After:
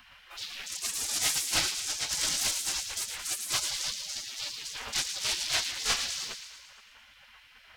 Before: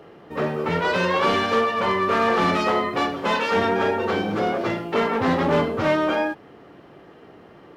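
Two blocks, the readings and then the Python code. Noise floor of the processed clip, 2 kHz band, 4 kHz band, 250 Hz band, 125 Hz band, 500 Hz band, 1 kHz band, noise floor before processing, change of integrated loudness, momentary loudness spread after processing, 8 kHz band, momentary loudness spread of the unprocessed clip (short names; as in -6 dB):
-57 dBFS, -11.0 dB, +2.5 dB, -28.0 dB, -21.0 dB, -28.0 dB, -21.5 dB, -48 dBFS, -8.0 dB, 11 LU, +18.0 dB, 6 LU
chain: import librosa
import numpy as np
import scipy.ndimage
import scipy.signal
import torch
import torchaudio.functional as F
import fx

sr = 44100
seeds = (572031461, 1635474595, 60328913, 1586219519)

y = fx.cheby_harmonics(x, sr, harmonics=(7,), levels_db=(-7,), full_scale_db=-11.0)
y = fx.spec_gate(y, sr, threshold_db=-20, keep='weak')
y = fx.echo_wet_highpass(y, sr, ms=112, feedback_pct=60, hz=2200.0, wet_db=-7)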